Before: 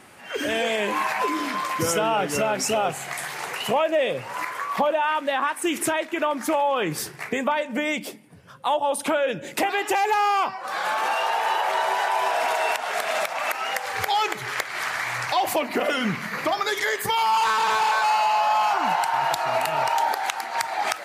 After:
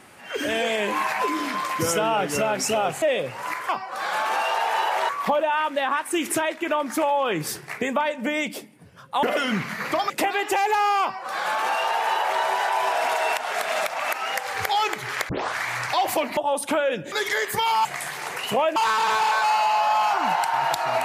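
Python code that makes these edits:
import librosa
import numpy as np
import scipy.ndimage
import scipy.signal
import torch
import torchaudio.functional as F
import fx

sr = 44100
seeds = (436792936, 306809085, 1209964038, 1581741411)

y = fx.edit(x, sr, fx.move(start_s=3.02, length_s=0.91, to_s=17.36),
    fx.swap(start_s=8.74, length_s=0.75, other_s=15.76, other_length_s=0.87),
    fx.duplicate(start_s=10.41, length_s=1.4, to_s=4.6),
    fx.tape_start(start_s=14.68, length_s=0.27), tone=tone)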